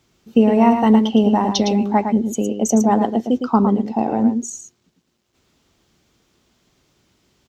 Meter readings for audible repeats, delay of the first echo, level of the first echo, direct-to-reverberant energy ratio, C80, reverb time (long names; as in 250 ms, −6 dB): 1, 110 ms, −7.0 dB, no reverb audible, no reverb audible, no reverb audible